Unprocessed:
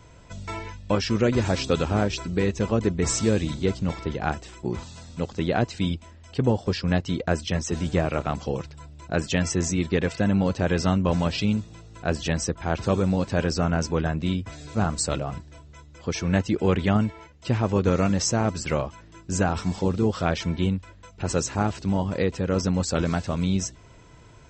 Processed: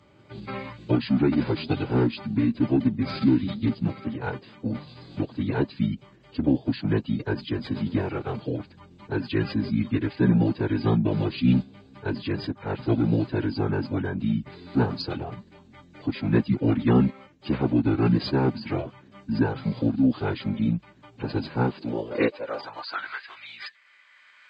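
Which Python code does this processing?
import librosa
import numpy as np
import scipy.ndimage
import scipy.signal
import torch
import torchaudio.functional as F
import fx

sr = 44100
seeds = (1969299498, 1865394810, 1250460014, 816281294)

y = fx.recorder_agc(x, sr, target_db=-14.0, rise_db_per_s=7.4, max_gain_db=30)
y = fx.filter_sweep_highpass(y, sr, from_hz=210.0, to_hz=1800.0, start_s=21.59, end_s=23.22, q=3.8)
y = fx.pitch_keep_formants(y, sr, semitones=-9.0)
y = y * librosa.db_to_amplitude(-5.0)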